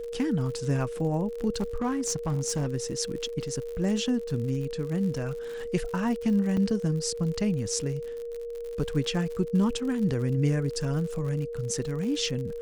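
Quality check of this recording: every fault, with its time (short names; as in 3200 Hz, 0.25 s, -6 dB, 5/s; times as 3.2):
crackle 79/s -35 dBFS
tone 470 Hz -33 dBFS
1.56–2.68 clipped -23 dBFS
6.57 gap 4.9 ms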